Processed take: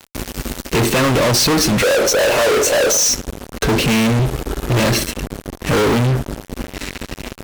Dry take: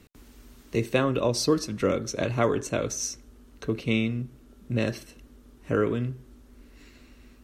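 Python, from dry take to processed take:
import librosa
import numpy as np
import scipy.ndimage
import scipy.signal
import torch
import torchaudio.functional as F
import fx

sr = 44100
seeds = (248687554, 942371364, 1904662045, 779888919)

y = fx.highpass_res(x, sr, hz=530.0, q=4.0, at=(1.82, 3.09))
y = fx.comb(y, sr, ms=2.4, depth=0.99, at=(4.19, 4.8))
y = fx.fuzz(y, sr, gain_db=48.0, gate_db=-48.0)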